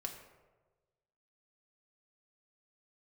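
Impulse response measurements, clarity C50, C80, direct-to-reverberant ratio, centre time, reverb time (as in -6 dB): 7.5 dB, 9.0 dB, 1.5 dB, 25 ms, 1.3 s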